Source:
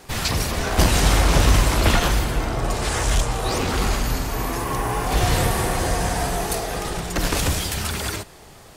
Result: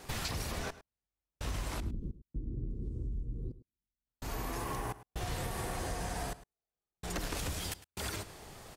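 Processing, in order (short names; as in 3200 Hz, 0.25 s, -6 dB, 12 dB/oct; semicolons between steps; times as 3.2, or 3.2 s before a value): 1.8–4.07 inverse Chebyshev low-pass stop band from 670 Hz, stop band 40 dB; compressor 6:1, threshold -29 dBFS, peak gain reduction 17 dB; step gate "xxx...xxx.xx" 64 bpm -60 dB; outdoor echo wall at 18 m, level -16 dB; gain -5.5 dB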